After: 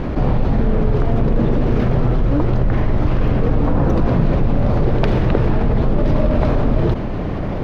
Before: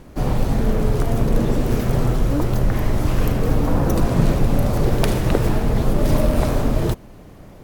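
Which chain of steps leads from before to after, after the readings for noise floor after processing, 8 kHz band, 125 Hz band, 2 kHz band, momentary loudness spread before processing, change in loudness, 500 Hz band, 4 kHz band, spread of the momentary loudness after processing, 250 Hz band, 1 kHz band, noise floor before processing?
−22 dBFS, below −15 dB, +3.0 dB, +1.0 dB, 3 LU, +2.5 dB, +2.5 dB, −3.5 dB, 2 LU, +3.0 dB, +2.0 dB, −42 dBFS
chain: high-frequency loss of the air 270 metres
envelope flattener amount 70%
level −1 dB

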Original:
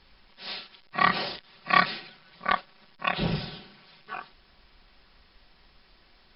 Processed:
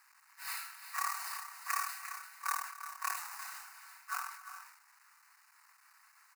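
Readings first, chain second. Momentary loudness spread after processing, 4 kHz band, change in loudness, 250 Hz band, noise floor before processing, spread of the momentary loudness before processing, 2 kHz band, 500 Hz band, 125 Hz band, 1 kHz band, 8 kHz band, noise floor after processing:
13 LU, −14.5 dB, −11.5 dB, below −40 dB, −60 dBFS, 18 LU, −12.0 dB, below −30 dB, below −40 dB, −11.0 dB, can't be measured, −66 dBFS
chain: each half-wave held at its own peak
dynamic equaliser 1,800 Hz, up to −5 dB, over −32 dBFS, Q 0.91
downward compressor 16 to 1, threshold −27 dBFS, peak gain reduction 15 dB
Butterworth high-pass 870 Hz 36 dB per octave
phaser with its sweep stopped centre 1,400 Hz, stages 4
on a send: multi-tap delay 75/268/348/381/415 ms −9/−19/−12/−15.5/−17 dB
on the sum: level that may fall only so fast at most 70 dB per second
level −2 dB

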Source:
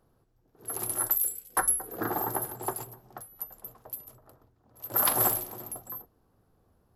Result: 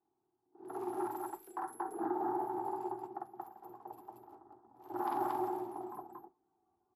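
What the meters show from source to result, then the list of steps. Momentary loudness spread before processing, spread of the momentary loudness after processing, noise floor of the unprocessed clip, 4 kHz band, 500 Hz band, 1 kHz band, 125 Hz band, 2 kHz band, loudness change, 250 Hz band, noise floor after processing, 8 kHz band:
18 LU, 19 LU, −69 dBFS, below −20 dB, −1.5 dB, −1.5 dB, −16.0 dB, −15.0 dB, −11.0 dB, +0.5 dB, −82 dBFS, −30.5 dB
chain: pair of resonant band-passes 540 Hz, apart 1.2 octaves
in parallel at −2.5 dB: downward compressor, threshold −49 dBFS, peak gain reduction 17.5 dB
on the sum: brickwall limiter −32 dBFS, peak gain reduction 10 dB
noise reduction from a noise print of the clip's start 13 dB
loudspeakers that aren't time-aligned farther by 17 metres 0 dB, 79 metres 0 dB
level +2 dB

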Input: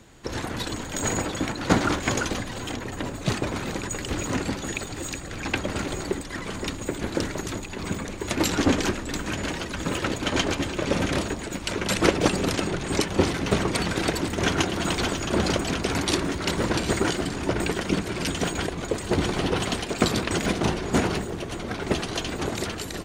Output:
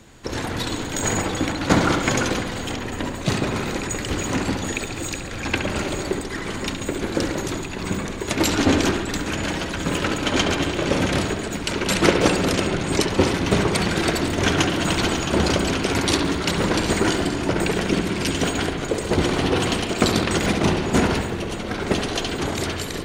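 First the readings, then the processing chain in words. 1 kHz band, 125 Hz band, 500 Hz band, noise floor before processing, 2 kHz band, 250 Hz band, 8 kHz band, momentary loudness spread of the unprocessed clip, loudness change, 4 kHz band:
+4.0 dB, +4.0 dB, +4.0 dB, −35 dBFS, +4.5 dB, +4.5 dB, +3.5 dB, 8 LU, +4.0 dB, +4.5 dB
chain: hum removal 59.31 Hz, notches 32
on a send: bucket-brigade delay 69 ms, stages 2,048, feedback 69%, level −8 dB
on the sum: level +3.5 dB

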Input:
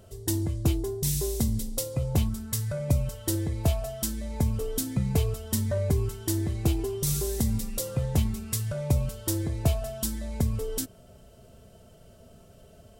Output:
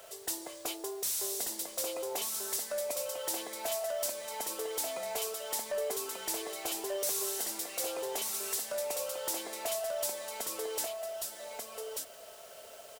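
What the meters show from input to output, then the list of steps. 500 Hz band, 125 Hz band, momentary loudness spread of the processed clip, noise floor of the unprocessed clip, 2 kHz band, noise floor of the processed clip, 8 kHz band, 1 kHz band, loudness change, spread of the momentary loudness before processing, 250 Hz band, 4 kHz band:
−2.0 dB, below −40 dB, 7 LU, −54 dBFS, +1.5 dB, −51 dBFS, 0.0 dB, +2.0 dB, −6.0 dB, 4 LU, −18.0 dB, +0.5 dB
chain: high-pass filter 550 Hz 24 dB per octave
dynamic equaliser 1,800 Hz, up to −4 dB, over −51 dBFS, Q 0.94
in parallel at +2 dB: downward compressor 5 to 1, threshold −42 dBFS, peak gain reduction 14.5 dB
on the sum: bit reduction 9 bits
soft clipping −29 dBFS, distortion −9 dB
on a send: single-tap delay 1,188 ms −3.5 dB

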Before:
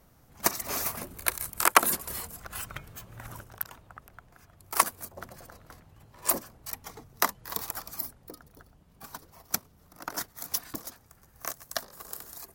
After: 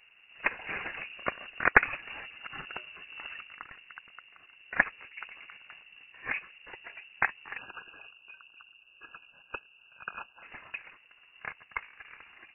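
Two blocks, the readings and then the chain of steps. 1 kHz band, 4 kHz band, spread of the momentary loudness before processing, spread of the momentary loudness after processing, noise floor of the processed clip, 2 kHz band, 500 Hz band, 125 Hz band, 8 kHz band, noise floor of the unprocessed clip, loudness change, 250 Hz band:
−5.5 dB, −9.5 dB, 19 LU, 21 LU, −61 dBFS, +5.5 dB, −3.5 dB, −5.5 dB, below −40 dB, −60 dBFS, −3.0 dB, −5.5 dB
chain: time-frequency box erased 0:07.58–0:10.43, 350–1,100 Hz
voice inversion scrambler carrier 2,800 Hz

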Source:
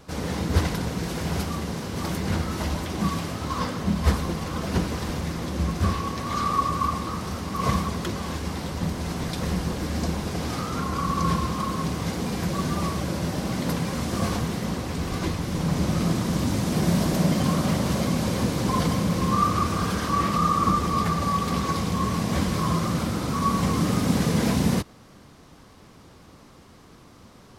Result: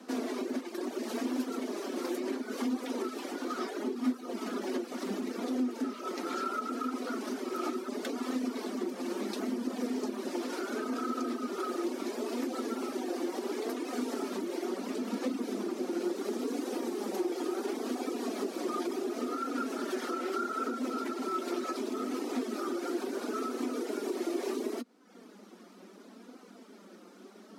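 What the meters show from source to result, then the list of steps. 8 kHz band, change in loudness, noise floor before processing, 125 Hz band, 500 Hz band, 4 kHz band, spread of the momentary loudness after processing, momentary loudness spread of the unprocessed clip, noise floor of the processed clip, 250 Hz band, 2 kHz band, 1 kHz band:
−11.5 dB, −9.5 dB, −50 dBFS, below −30 dB, −3.0 dB, −11.5 dB, 4 LU, 7 LU, −54 dBFS, −7.5 dB, −9.5 dB, −12.0 dB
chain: reverb reduction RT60 0.67 s
low-shelf EQ 120 Hz +8.5 dB
downward compressor, threshold −27 dBFS, peak gain reduction 17 dB
frequency shifter +180 Hz
flanger 0.72 Hz, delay 3.8 ms, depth 2 ms, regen +48%

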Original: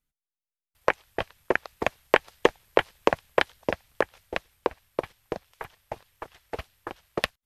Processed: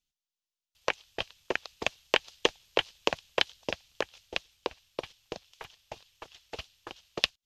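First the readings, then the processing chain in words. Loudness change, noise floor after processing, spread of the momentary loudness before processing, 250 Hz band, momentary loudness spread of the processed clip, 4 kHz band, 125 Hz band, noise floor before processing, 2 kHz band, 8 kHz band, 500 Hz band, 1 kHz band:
−4.0 dB, below −85 dBFS, 17 LU, −8.0 dB, 19 LU, +5.5 dB, −8.0 dB, below −85 dBFS, −4.5 dB, +3.5 dB, −8.0 dB, −8.0 dB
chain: flat-topped bell 4,300 Hz +13.5 dB
level −8 dB

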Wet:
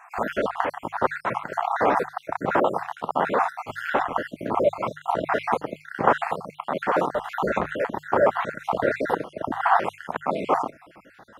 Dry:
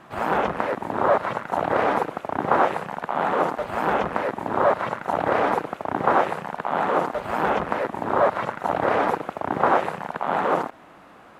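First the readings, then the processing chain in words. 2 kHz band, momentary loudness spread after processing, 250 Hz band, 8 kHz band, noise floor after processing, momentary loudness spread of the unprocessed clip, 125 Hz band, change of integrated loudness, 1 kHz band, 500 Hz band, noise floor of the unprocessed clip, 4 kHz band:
−0.5 dB, 8 LU, −2.0 dB, can't be measured, −54 dBFS, 7 LU, −2.5 dB, −1.5 dB, −2.0 dB, −1.5 dB, −48 dBFS, −1.5 dB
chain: time-frequency cells dropped at random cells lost 57%
mains-hum notches 50/100/150 Hz
level +2 dB

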